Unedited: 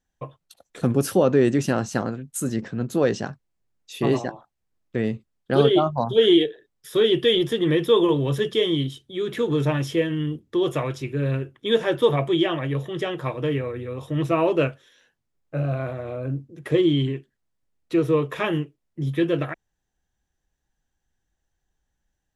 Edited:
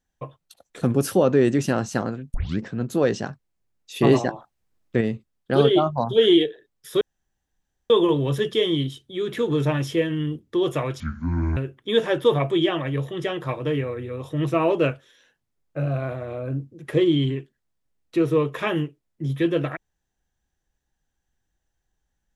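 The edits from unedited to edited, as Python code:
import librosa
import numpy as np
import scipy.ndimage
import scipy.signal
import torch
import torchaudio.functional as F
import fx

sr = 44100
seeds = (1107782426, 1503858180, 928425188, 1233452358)

y = fx.edit(x, sr, fx.tape_start(start_s=2.34, length_s=0.25),
    fx.clip_gain(start_s=3.96, length_s=1.05, db=4.5),
    fx.room_tone_fill(start_s=7.01, length_s=0.89),
    fx.speed_span(start_s=11.0, length_s=0.34, speed=0.6), tone=tone)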